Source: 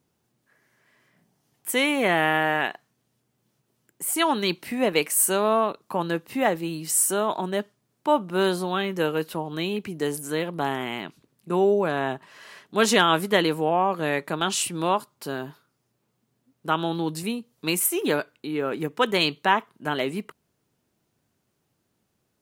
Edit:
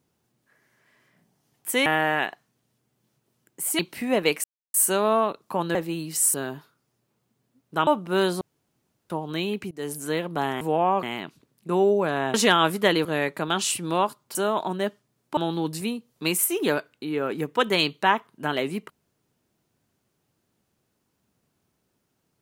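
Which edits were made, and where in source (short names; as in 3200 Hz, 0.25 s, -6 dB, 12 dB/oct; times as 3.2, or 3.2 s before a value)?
1.86–2.28 cut
4.21–4.49 cut
5.14 insert silence 0.30 s
6.15–6.49 cut
7.08–8.1 swap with 15.26–16.79
8.64–9.33 room tone
9.94–10.2 fade in, from -21 dB
12.15–12.83 cut
13.54–13.96 move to 10.84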